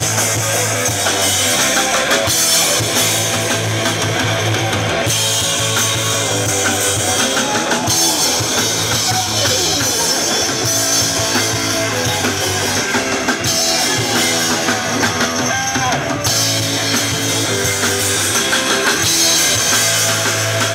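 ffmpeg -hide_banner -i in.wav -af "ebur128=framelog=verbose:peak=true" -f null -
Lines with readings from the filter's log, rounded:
Integrated loudness:
  I:         -13.7 LUFS
  Threshold: -23.7 LUFS
Loudness range:
  LRA:         2.0 LU
  Threshold: -33.9 LUFS
  LRA low:   -14.7 LUFS
  LRA high:  -12.7 LUFS
True peak:
  Peak:       -1.1 dBFS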